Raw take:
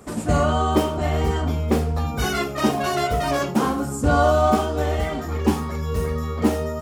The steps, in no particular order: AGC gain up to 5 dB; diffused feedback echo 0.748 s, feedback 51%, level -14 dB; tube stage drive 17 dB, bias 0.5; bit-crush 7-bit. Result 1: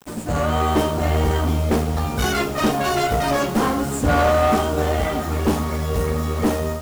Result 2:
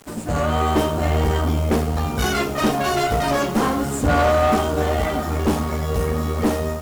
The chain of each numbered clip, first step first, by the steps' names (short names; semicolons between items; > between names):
tube stage > diffused feedback echo > bit-crush > AGC; diffused feedback echo > bit-crush > tube stage > AGC